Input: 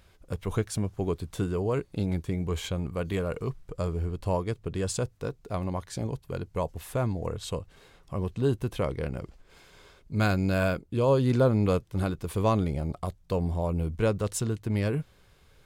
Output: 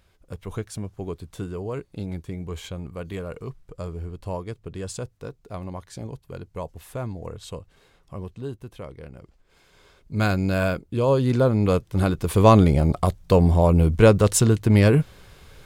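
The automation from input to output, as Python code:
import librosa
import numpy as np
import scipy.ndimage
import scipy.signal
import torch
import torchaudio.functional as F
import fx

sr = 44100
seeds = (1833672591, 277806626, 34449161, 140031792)

y = fx.gain(x, sr, db=fx.line((8.14, -3.0), (8.57, -9.0), (9.16, -9.0), (10.23, 3.0), (11.52, 3.0), (12.58, 11.5)))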